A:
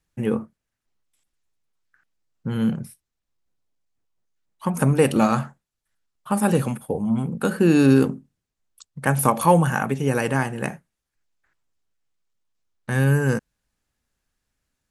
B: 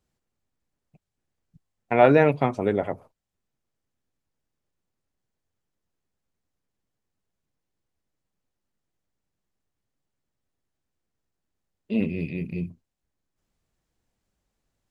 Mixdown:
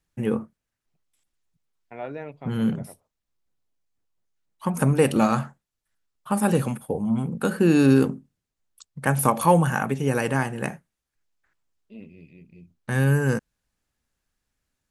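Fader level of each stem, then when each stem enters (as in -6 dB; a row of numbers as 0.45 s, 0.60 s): -1.5 dB, -18.5 dB; 0.00 s, 0.00 s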